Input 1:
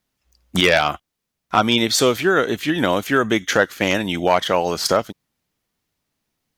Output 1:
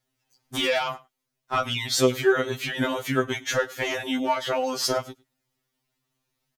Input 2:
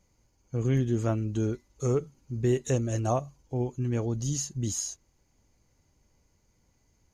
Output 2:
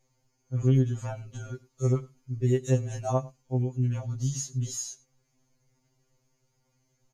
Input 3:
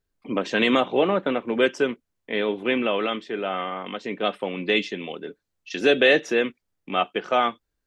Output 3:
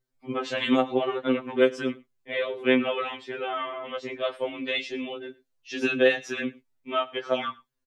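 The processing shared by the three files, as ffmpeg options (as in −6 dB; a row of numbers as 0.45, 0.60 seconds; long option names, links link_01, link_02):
-af "acompressor=threshold=-20dB:ratio=2.5,aecho=1:1:103:0.0708,afftfilt=real='re*2.45*eq(mod(b,6),0)':imag='im*2.45*eq(mod(b,6),0)':win_size=2048:overlap=0.75"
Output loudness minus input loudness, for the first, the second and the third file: −7.0, +1.0, −4.0 LU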